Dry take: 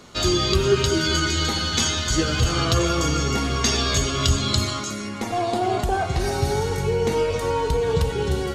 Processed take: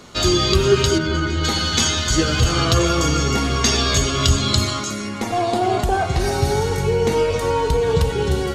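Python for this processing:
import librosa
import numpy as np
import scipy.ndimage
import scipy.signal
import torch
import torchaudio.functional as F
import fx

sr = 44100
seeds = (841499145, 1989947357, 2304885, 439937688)

y = fx.lowpass(x, sr, hz=1200.0, slope=6, at=(0.97, 1.43), fade=0.02)
y = F.gain(torch.from_numpy(y), 3.5).numpy()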